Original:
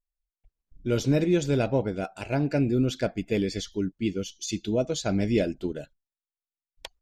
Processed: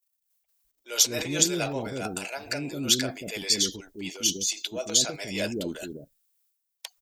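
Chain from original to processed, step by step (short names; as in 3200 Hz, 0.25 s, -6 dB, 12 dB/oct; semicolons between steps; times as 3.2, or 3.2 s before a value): transient shaper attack -5 dB, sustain +9 dB; RIAA curve recording; bands offset in time highs, lows 0.2 s, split 470 Hz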